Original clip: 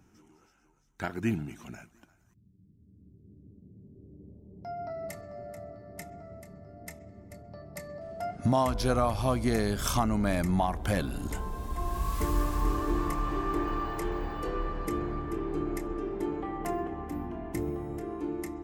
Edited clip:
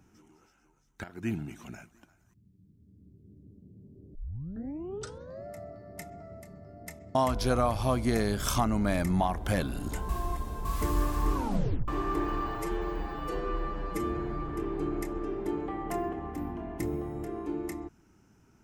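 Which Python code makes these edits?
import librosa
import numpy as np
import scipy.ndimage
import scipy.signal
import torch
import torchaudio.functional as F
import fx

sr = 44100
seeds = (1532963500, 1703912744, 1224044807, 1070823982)

y = fx.edit(x, sr, fx.fade_in_from(start_s=1.04, length_s=0.57, curve='qsin', floor_db=-17.0),
    fx.tape_start(start_s=4.15, length_s=1.31),
    fx.cut(start_s=7.15, length_s=1.39),
    fx.reverse_span(start_s=11.48, length_s=0.56),
    fx.tape_stop(start_s=12.73, length_s=0.54),
    fx.stretch_span(start_s=13.94, length_s=1.29, factor=1.5), tone=tone)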